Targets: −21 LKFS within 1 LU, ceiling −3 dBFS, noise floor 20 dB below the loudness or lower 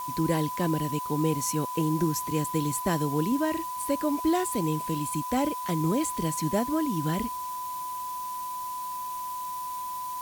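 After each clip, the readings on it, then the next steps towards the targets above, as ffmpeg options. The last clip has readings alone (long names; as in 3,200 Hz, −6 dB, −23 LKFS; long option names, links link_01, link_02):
interfering tone 1,000 Hz; level of the tone −32 dBFS; background noise floor −35 dBFS; target noise floor −49 dBFS; integrated loudness −29.0 LKFS; sample peak −12.5 dBFS; target loudness −21.0 LKFS
→ -af "bandreject=frequency=1000:width=30"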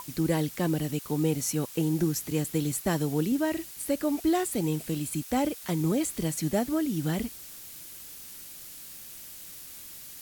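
interfering tone none found; background noise floor −45 dBFS; target noise floor −49 dBFS
→ -af "afftdn=noise_reduction=6:noise_floor=-45"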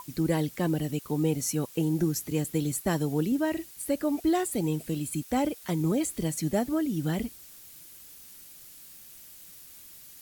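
background noise floor −49 dBFS; integrated loudness −29.0 LKFS; sample peak −13.5 dBFS; target loudness −21.0 LKFS
→ -af "volume=8dB"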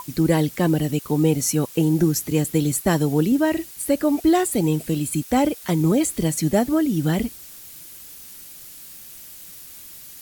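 integrated loudness −21.0 LKFS; sample peak −5.5 dBFS; background noise floor −41 dBFS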